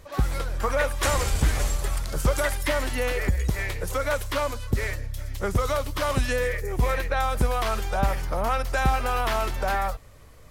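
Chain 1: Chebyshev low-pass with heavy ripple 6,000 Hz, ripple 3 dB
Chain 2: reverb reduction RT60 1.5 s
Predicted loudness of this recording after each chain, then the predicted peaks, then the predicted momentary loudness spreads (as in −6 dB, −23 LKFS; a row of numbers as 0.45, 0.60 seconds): −28.5, −28.0 LKFS; −11.0, −9.5 dBFS; 5, 7 LU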